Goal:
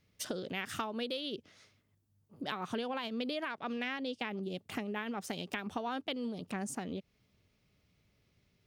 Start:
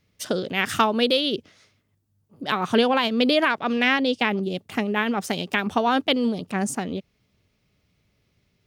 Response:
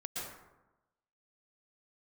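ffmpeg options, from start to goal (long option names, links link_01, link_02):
-af "acompressor=threshold=-32dB:ratio=4,volume=-4.5dB"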